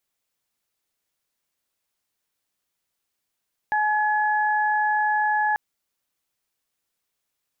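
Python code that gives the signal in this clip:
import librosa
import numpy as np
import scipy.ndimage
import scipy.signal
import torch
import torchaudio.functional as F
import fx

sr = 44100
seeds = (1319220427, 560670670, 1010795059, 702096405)

y = fx.additive_steady(sr, length_s=1.84, hz=848.0, level_db=-20.5, upper_db=(-3.0,))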